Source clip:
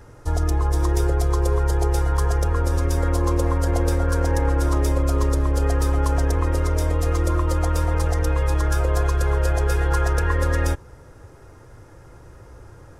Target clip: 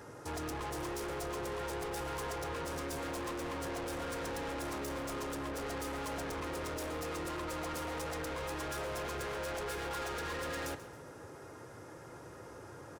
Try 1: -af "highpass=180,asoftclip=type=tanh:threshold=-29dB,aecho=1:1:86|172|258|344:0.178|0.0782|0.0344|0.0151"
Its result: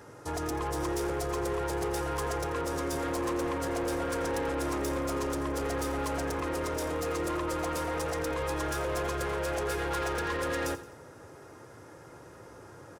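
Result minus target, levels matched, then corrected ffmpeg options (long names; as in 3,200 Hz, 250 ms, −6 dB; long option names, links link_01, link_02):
echo 50 ms early; soft clipping: distortion −4 dB
-af "highpass=180,asoftclip=type=tanh:threshold=-37.5dB,aecho=1:1:136|272|408|544:0.178|0.0782|0.0344|0.0151"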